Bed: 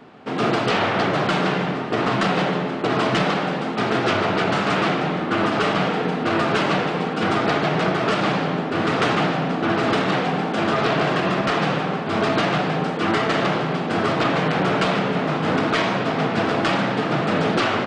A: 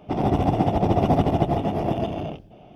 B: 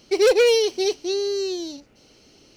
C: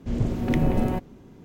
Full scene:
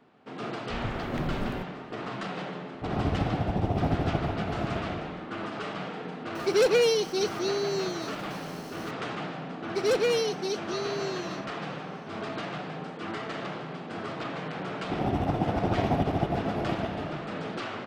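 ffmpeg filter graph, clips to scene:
-filter_complex "[1:a]asplit=2[a][b];[2:a]asplit=2[c][d];[0:a]volume=-15dB[e];[a]lowshelf=f=170:g=8.5[f];[c]aeval=exprs='val(0)+0.5*0.0112*sgn(val(0))':c=same[g];[3:a]atrim=end=1.44,asetpts=PTS-STARTPTS,volume=-10dB,afade=t=in:d=0.004:c=hsin,afade=t=out:st=1.436:d=0.004:c=hsin,adelay=640[h];[f]atrim=end=2.75,asetpts=PTS-STARTPTS,volume=-11dB,afade=t=in:d=0.004:c=hsin,afade=t=out:st=2.746:d=0.004:c=hsin,adelay=2730[i];[g]atrim=end=2.56,asetpts=PTS-STARTPTS,volume=-6dB,afade=t=in:d=0.004:c=hsin,afade=t=out:st=2.556:d=0.004:c=hsin,adelay=6350[j];[d]atrim=end=2.56,asetpts=PTS-STARTPTS,volume=-9dB,afade=t=in:d=0.004:c=hsin,afade=t=out:st=2.556:d=0.004:c=hsin,adelay=9640[k];[b]atrim=end=2.75,asetpts=PTS-STARTPTS,volume=-7dB,afade=t=in:d=0.004:c=hsin,afade=t=out:st=2.746:d=0.004:c=hsin,adelay=14810[l];[e][h][i][j][k][l]amix=inputs=6:normalize=0"

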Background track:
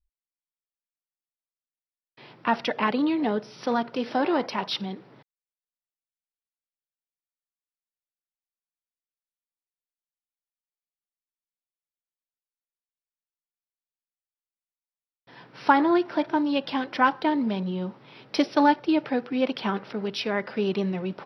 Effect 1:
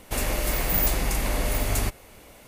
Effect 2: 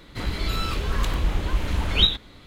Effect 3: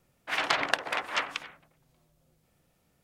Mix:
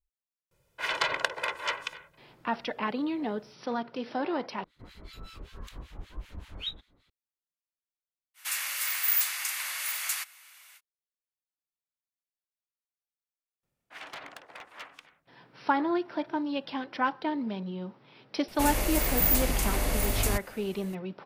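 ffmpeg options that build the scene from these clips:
-filter_complex "[3:a]asplit=2[a][b];[1:a]asplit=2[c][d];[0:a]volume=-7dB[e];[a]aecho=1:1:2:0.74[f];[2:a]acrossover=split=1300[g][h];[g]aeval=exprs='val(0)*(1-1/2+1/2*cos(2*PI*5.2*n/s))':c=same[i];[h]aeval=exprs='val(0)*(1-1/2-1/2*cos(2*PI*5.2*n/s))':c=same[j];[i][j]amix=inputs=2:normalize=0[k];[c]highpass=f=1.3k:w=0.5412,highpass=f=1.3k:w=1.3066[l];[b]volume=21dB,asoftclip=hard,volume=-21dB[m];[d]highshelf=f=6.6k:g=3.5[n];[e]asplit=2[o][p];[o]atrim=end=4.644[q];[k]atrim=end=2.46,asetpts=PTS-STARTPTS,volume=-15.5dB[r];[p]atrim=start=7.096[s];[f]atrim=end=3.03,asetpts=PTS-STARTPTS,volume=-3dB,afade=t=in:d=0.004:c=hsin,afade=t=out:st=3.026:d=0.004:c=hsin,adelay=510[t];[l]atrim=end=2.47,asetpts=PTS-STARTPTS,volume=-0.5dB,afade=t=in:d=0.05,afade=t=out:st=2.42:d=0.05,adelay=367794S[u];[m]atrim=end=3.03,asetpts=PTS-STARTPTS,volume=-14.5dB,afade=t=in:d=0.004:c=hsin,afade=t=out:st=3.026:d=0.004:c=hsin,adelay=13630[v];[n]atrim=end=2.47,asetpts=PTS-STARTPTS,volume=-3dB,afade=t=in:d=0.004:c=hsin,afade=t=out:st=2.466:d=0.004:c=hsin,adelay=18480[w];[q][r]acrossfade=d=0.004:c1=hsin:c2=hsin[x];[x][s]acrossfade=d=0.004:c1=hsin:c2=hsin[y];[y][t][u][v][w]amix=inputs=5:normalize=0"

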